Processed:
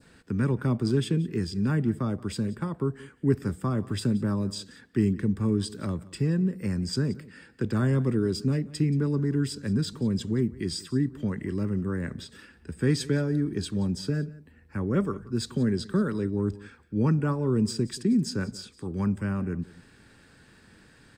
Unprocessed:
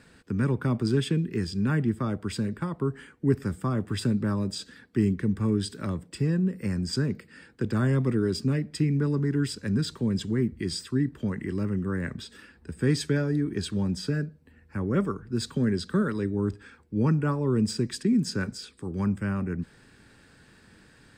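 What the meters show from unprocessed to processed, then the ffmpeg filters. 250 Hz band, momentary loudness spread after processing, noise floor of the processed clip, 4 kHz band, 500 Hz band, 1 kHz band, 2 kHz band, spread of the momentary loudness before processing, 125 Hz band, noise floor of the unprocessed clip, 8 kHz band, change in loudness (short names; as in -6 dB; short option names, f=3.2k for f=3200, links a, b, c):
0.0 dB, 8 LU, -57 dBFS, -1.0 dB, 0.0 dB, -1.5 dB, -2.5 dB, 9 LU, 0.0 dB, -57 dBFS, -0.5 dB, 0.0 dB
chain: -af "adynamicequalizer=threshold=0.00398:dfrequency=2000:dqfactor=0.83:tfrequency=2000:tqfactor=0.83:attack=5:release=100:ratio=0.375:range=2.5:mode=cutabove:tftype=bell,aecho=1:1:178:0.1"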